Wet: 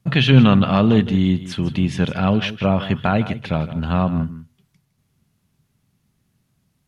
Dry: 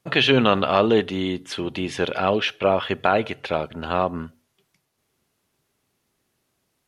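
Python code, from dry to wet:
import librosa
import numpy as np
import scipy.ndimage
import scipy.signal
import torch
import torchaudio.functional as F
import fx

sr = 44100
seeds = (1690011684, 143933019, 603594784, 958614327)

y = fx.low_shelf_res(x, sr, hz=260.0, db=12.5, q=1.5)
y = y + 10.0 ** (-14.0 / 20.0) * np.pad(y, (int(160 * sr / 1000.0), 0))[:len(y)]
y = y * 10.0 ** (-1.0 / 20.0)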